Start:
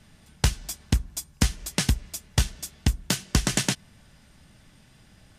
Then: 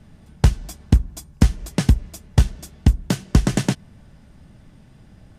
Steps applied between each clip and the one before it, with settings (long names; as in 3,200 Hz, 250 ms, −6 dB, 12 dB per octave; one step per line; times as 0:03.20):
tilt shelving filter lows +7 dB, about 1,200 Hz
level +1.5 dB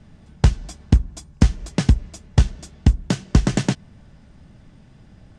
low-pass filter 8,200 Hz 24 dB per octave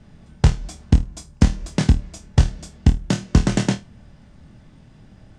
flutter between parallel walls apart 4.4 metres, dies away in 0.21 s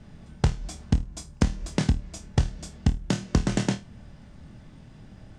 downward compressor 2 to 1, threshold −24 dBFS, peak gain reduction 9 dB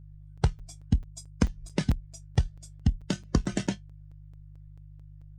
spectral dynamics exaggerated over time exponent 2
hum with harmonics 50 Hz, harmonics 3, −48 dBFS −3 dB per octave
regular buffer underruns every 0.22 s, samples 256, zero, from 0:00.37